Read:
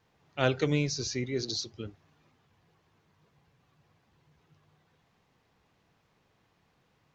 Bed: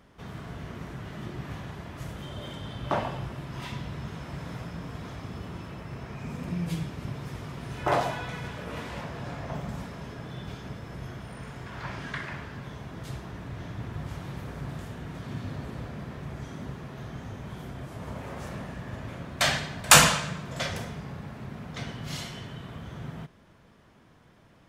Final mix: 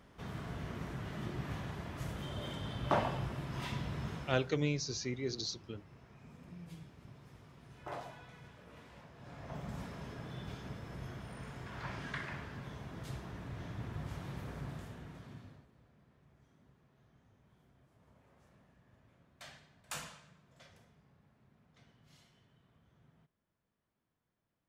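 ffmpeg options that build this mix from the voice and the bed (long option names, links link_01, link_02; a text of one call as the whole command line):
ffmpeg -i stem1.wav -i stem2.wav -filter_complex "[0:a]adelay=3900,volume=-5.5dB[link_01];[1:a]volume=10dB,afade=type=out:start_time=4.11:duration=0.4:silence=0.158489,afade=type=in:start_time=9.16:duration=0.69:silence=0.223872,afade=type=out:start_time=14.54:duration=1.13:silence=0.0749894[link_02];[link_01][link_02]amix=inputs=2:normalize=0" out.wav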